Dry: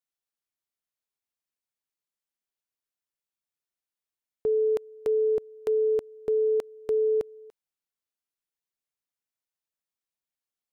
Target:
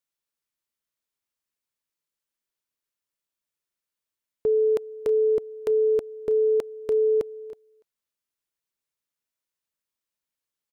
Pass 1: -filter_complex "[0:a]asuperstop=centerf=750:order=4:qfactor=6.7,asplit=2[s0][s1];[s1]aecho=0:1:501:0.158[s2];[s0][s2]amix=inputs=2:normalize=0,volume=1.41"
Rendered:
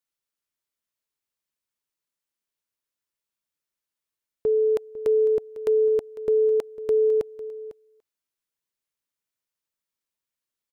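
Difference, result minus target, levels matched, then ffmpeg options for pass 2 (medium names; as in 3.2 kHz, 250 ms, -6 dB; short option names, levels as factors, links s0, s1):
echo 180 ms late
-filter_complex "[0:a]asuperstop=centerf=750:order=4:qfactor=6.7,asplit=2[s0][s1];[s1]aecho=0:1:321:0.158[s2];[s0][s2]amix=inputs=2:normalize=0,volume=1.41"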